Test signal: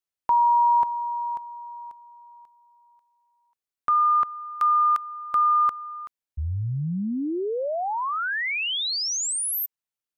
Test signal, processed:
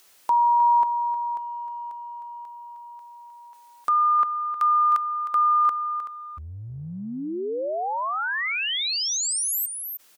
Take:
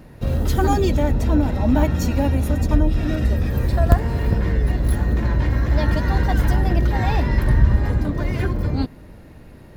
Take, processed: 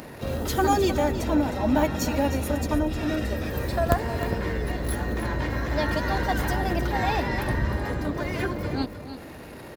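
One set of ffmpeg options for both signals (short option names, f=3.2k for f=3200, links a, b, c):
-filter_complex "[0:a]highpass=49,lowshelf=f=160:g=-4.5,asplit=2[a][b];[b]aecho=0:1:310:0.266[c];[a][c]amix=inputs=2:normalize=0,acompressor=mode=upward:threshold=-29dB:ratio=2.5:attack=0.93:release=22:knee=2.83:detection=peak,bass=f=250:g=-7,treble=f=4k:g=1"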